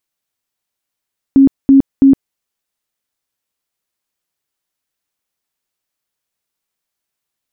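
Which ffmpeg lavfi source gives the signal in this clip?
-f lavfi -i "aevalsrc='0.708*sin(2*PI*272*mod(t,0.33))*lt(mod(t,0.33),31/272)':d=0.99:s=44100"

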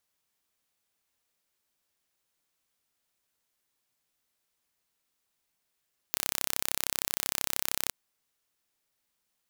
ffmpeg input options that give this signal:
-f lavfi -i "aevalsrc='0.841*eq(mod(n,1336),0)':d=1.77:s=44100"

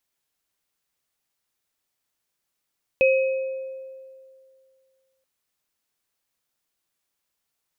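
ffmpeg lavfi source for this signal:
-f lavfi -i "aevalsrc='0.2*pow(10,-3*t/2.27)*sin(2*PI*529*t)+0.112*pow(10,-3*t/1.07)*sin(2*PI*2540*t)':d=2.23:s=44100"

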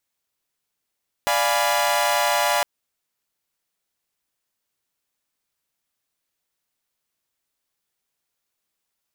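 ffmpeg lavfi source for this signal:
-f lavfi -i "aevalsrc='0.0841*((2*mod(587.33*t,1)-1)+(2*mod(698.46*t,1)-1)+(2*mod(830.61*t,1)-1)+(2*mod(987.77*t,1)-1))':d=1.36:s=44100"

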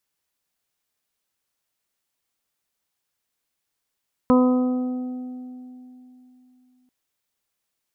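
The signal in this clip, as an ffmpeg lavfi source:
-f lavfi -i "aevalsrc='0.224*pow(10,-3*t/3.29)*sin(2*PI*252*t)+0.133*pow(10,-3*t/1.83)*sin(2*PI*504*t)+0.0355*pow(10,-3*t/2.75)*sin(2*PI*756*t)+0.0841*pow(10,-3*t/0.9)*sin(2*PI*1008*t)+0.0473*pow(10,-3*t/1.34)*sin(2*PI*1260*t)':d=2.59:s=44100"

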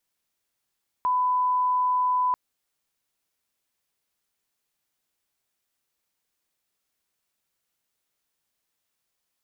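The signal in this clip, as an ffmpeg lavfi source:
-f lavfi -i "sine=f=1000:d=1.29:r=44100,volume=-1.94dB"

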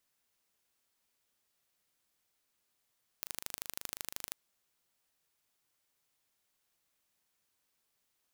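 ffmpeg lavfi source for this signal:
-f lavfi -i "aevalsrc='0.316*eq(mod(n,1716),0)*(0.5+0.5*eq(mod(n,3432),0))':d=1.1:s=44100"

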